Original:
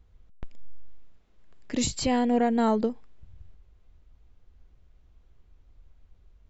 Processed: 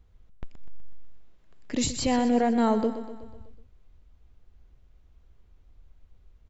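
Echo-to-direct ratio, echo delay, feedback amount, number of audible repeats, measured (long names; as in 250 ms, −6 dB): −10.5 dB, 124 ms, 56%, 5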